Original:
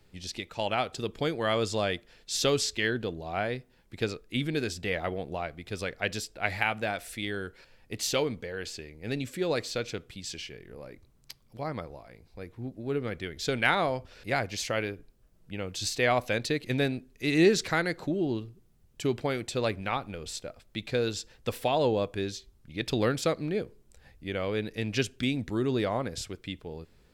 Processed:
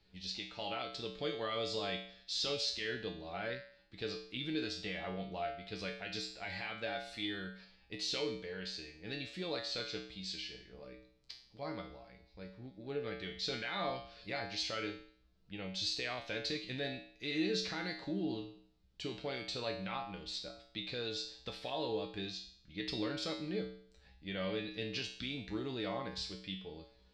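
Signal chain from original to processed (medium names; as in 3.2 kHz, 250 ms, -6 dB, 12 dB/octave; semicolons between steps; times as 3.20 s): peak limiter -21.5 dBFS, peak gain reduction 11.5 dB; resonant low-pass 4.3 kHz, resonance Q 2.7; feedback comb 63 Hz, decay 0.56 s, harmonics odd, mix 90%; trim +4 dB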